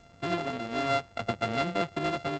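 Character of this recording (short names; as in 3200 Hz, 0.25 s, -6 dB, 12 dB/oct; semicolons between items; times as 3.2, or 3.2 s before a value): a buzz of ramps at a fixed pitch in blocks of 64 samples; G.722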